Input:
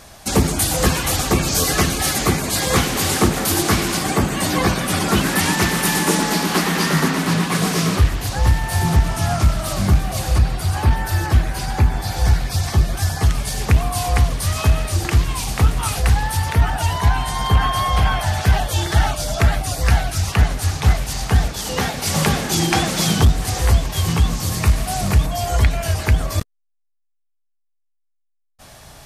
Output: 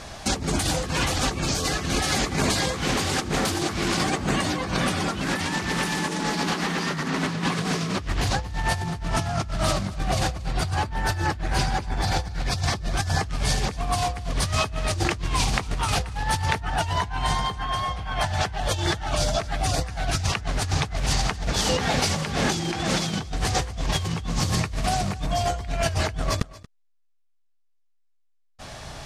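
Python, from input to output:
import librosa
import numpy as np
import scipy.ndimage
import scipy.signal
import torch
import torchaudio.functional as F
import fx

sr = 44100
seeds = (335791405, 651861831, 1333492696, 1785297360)

p1 = scipy.signal.sosfilt(scipy.signal.butter(2, 6500.0, 'lowpass', fs=sr, output='sos'), x)
p2 = fx.over_compress(p1, sr, threshold_db=-25.0, ratio=-1.0)
p3 = p2 + fx.echo_single(p2, sr, ms=231, db=-20.0, dry=0)
y = p3 * librosa.db_to_amplitude(-1.5)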